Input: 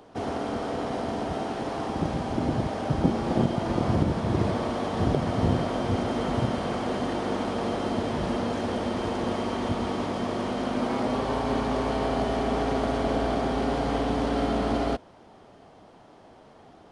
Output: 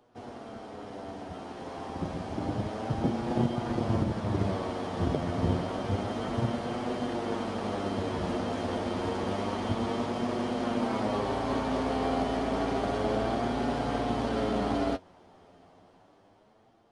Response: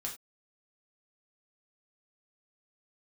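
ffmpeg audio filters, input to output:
-af "dynaudnorm=f=710:g=5:m=10dB,flanger=delay=8.2:depth=3.2:regen=37:speed=0.29:shape=sinusoidal,aeval=exprs='0.501*(cos(1*acos(clip(val(0)/0.501,-1,1)))-cos(1*PI/2))+0.00794*(cos(7*acos(clip(val(0)/0.501,-1,1)))-cos(7*PI/2))':c=same,volume=-8dB"

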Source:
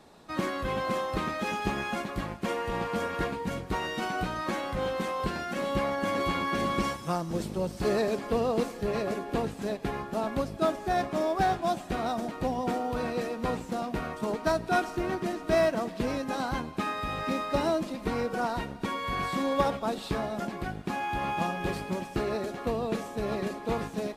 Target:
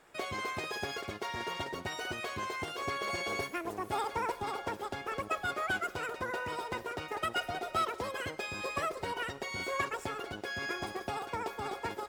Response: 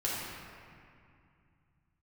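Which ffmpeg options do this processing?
-af "lowpass=f=2.5k:p=1,aemphasis=mode=production:type=cd,asetrate=88200,aresample=44100,volume=-6dB"

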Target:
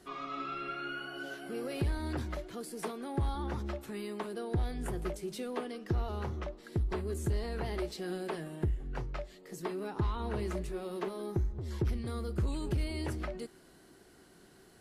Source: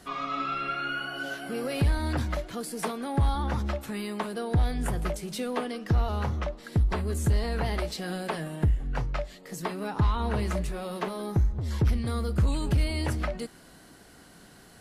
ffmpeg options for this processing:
-af "equalizer=f=370:t=o:w=0.35:g=11,volume=-8.5dB"

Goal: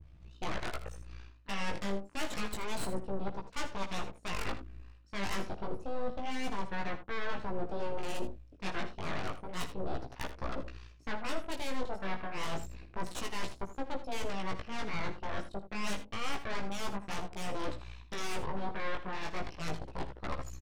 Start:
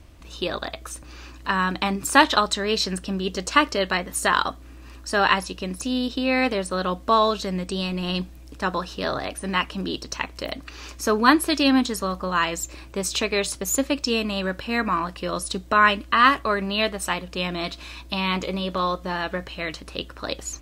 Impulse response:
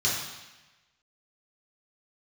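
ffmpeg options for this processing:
-af "lowpass=3.1k,afwtdn=0.02,highpass=f=110:p=1,aemphasis=mode=production:type=50fm,areverse,acompressor=threshold=-37dB:ratio=8,areverse,aeval=exprs='0.0841*(cos(1*acos(clip(val(0)/0.0841,-1,1)))-cos(1*PI/2))+0.0422*(cos(8*acos(clip(val(0)/0.0841,-1,1)))-cos(8*PI/2))':c=same,asoftclip=type=tanh:threshold=-27.5dB,flanger=delay=15:depth=5.4:speed=0.29,aecho=1:1:56|80:0.141|0.224,adynamicequalizer=threshold=0.00158:dfrequency=1800:dqfactor=0.7:tfrequency=1800:tqfactor=0.7:attack=5:release=100:ratio=0.375:range=2:mode=cutabove:tftype=highshelf,volume=3.5dB"

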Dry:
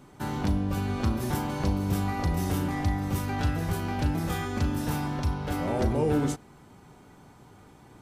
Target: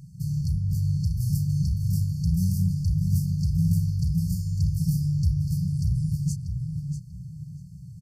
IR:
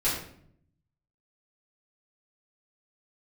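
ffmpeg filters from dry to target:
-filter_complex "[0:a]equalizer=f=1k:w=0.78:g=5.5,aeval=exprs='0.237*(cos(1*acos(clip(val(0)/0.237,-1,1)))-cos(1*PI/2))+0.0335*(cos(2*acos(clip(val(0)/0.237,-1,1)))-cos(2*PI/2))+0.00237*(cos(6*acos(clip(val(0)/0.237,-1,1)))-cos(6*PI/2))':c=same,acrossover=split=2300[a][b];[a]asoftclip=type=tanh:threshold=-29dB[c];[c][b]amix=inputs=2:normalize=0,equalizer=f=170:w=0.38:g=13.5,asplit=2[d][e];[e]adelay=640,lowpass=f=3.5k:p=1,volume=-5dB,asplit=2[f][g];[g]adelay=640,lowpass=f=3.5k:p=1,volume=0.29,asplit=2[h][i];[i]adelay=640,lowpass=f=3.5k:p=1,volume=0.29,asplit=2[j][k];[k]adelay=640,lowpass=f=3.5k:p=1,volume=0.29[l];[f][h][j][l]amix=inputs=4:normalize=0[m];[d][m]amix=inputs=2:normalize=0,afftfilt=real='re*(1-between(b*sr/4096,190,4300))':imag='im*(1-between(b*sr/4096,190,4300))':win_size=4096:overlap=0.75,afftfilt=real='re*(1-between(b*sr/1024,680*pow(2700/680,0.5+0.5*sin(2*PI*3.4*pts/sr))/1.41,680*pow(2700/680,0.5+0.5*sin(2*PI*3.4*pts/sr))*1.41))':imag='im*(1-between(b*sr/1024,680*pow(2700/680,0.5+0.5*sin(2*PI*3.4*pts/sr))/1.41,680*pow(2700/680,0.5+0.5*sin(2*PI*3.4*pts/sr))*1.41))':win_size=1024:overlap=0.75"

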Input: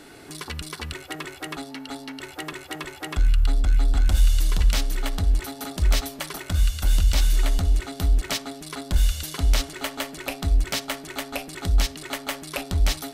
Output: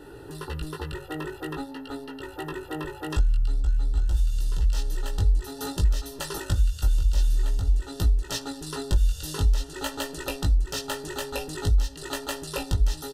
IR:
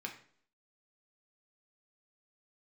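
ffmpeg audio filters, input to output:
-af "asuperstop=centerf=2200:order=8:qfactor=5.2,aecho=1:1:2.2:0.61,acompressor=threshold=-24dB:ratio=8,asetnsamples=n=441:p=0,asendcmd='3.1 equalizer g 3.5',equalizer=f=6.3k:w=0.74:g=-10,flanger=delay=17.5:depth=2.2:speed=0.49,lowshelf=f=490:g=8"

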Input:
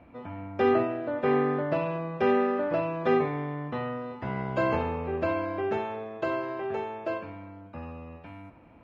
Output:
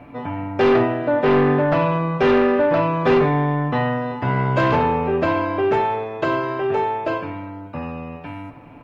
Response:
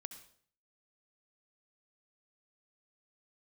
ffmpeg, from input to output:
-filter_complex "[0:a]aecho=1:1:6.9:0.48,aeval=exprs='0.251*sin(PI/2*2.24*val(0)/0.251)':c=same,asplit=2[a][b];[1:a]atrim=start_sample=2205,adelay=8[c];[b][c]afir=irnorm=-1:irlink=0,volume=-8dB[d];[a][d]amix=inputs=2:normalize=0"

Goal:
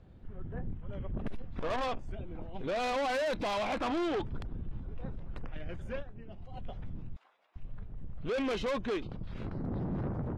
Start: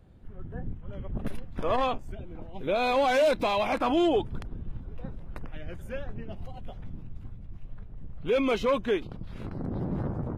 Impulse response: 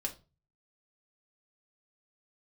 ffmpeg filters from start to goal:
-filter_complex "[0:a]lowpass=5.7k,asplit=3[a][b][c];[a]afade=t=out:st=6.01:d=0.02[d];[b]acompressor=threshold=-41dB:ratio=6,afade=t=in:st=6.01:d=0.02,afade=t=out:st=6.51:d=0.02[e];[c]afade=t=in:st=6.51:d=0.02[f];[d][e][f]amix=inputs=3:normalize=0,asettb=1/sr,asplit=3[g][h][i];[g]atrim=end=7.164[j];[h]atrim=start=7.16:end=7.56,asetpts=PTS-STARTPTS,afade=t=in:d=0.004:c=qsin,afade=t=out:st=0.396:d=0.004:c=qsin,highpass=f=680:w=0.5412,highpass=f=680:w=1.3066[k];[i]atrim=start=7.556[l];[j][k]acrossfade=d=0.004:c1=hsin:c2=qsin[m];[m][l]acrossfade=d=0.004:c1=qsin:c2=hsin,asoftclip=type=tanh:threshold=-29.5dB"

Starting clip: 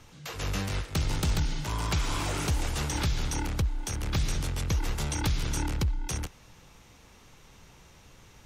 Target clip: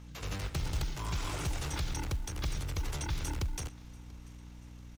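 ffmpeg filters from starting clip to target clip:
-filter_complex "[0:a]equalizer=f=220:t=o:w=0.2:g=-14,atempo=1.7,acrusher=bits=7:mode=log:mix=0:aa=0.000001,aeval=exprs='val(0)+0.00794*(sin(2*PI*60*n/s)+sin(2*PI*2*60*n/s)/2+sin(2*PI*3*60*n/s)/3+sin(2*PI*4*60*n/s)/4+sin(2*PI*5*60*n/s)/5)':c=same,asplit=2[a][b];[b]aecho=0:1:688|1376|2064|2752:0.0668|0.0374|0.021|0.0117[c];[a][c]amix=inputs=2:normalize=0,volume=-5.5dB"

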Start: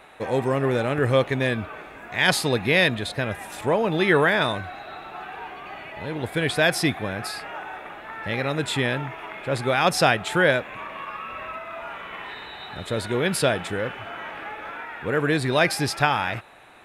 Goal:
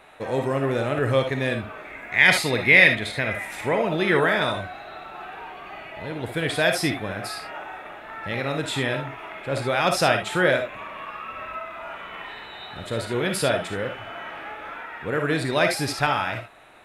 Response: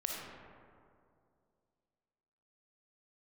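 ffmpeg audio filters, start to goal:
-filter_complex "[0:a]asettb=1/sr,asplit=3[a][b][c];[a]atrim=end=1.854[d];[b]atrim=start=1.85:end=3.85,asetpts=PTS-STARTPTS,afade=t=in:d=0.004:c=qsin,afade=t=out:st=1.996:d=0.004:c=qsin,equalizer=f=2.1k:w=3.7:g=13.5[e];[c]atrim=start=3.846[f];[d][e]acrossfade=d=0.004:c1=hsin:c2=qsin[g];[g][f]acrossfade=d=0.004:c1=qsin:c2=hsin[h];[1:a]atrim=start_sample=2205,atrim=end_sample=3528[i];[h][i]afir=irnorm=-1:irlink=0,volume=-1dB"

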